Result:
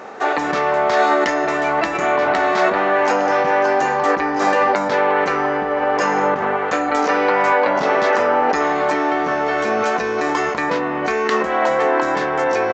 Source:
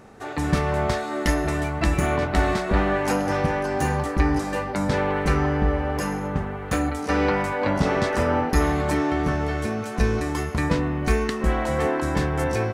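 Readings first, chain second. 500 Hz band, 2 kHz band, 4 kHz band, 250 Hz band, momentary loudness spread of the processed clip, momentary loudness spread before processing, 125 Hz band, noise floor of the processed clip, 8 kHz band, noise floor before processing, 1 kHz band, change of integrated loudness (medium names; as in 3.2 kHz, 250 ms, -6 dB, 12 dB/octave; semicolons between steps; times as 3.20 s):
+8.0 dB, +8.5 dB, +5.0 dB, 0.0 dB, 4 LU, 4 LU, -13.0 dB, -22 dBFS, +0.5 dB, -32 dBFS, +10.5 dB, +6.0 dB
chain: resampled via 16 kHz; in parallel at +1 dB: compressor with a negative ratio -28 dBFS, ratio -0.5; on the sum: high-pass 520 Hz 12 dB/octave; treble shelf 2.9 kHz -10.5 dB; trim +8 dB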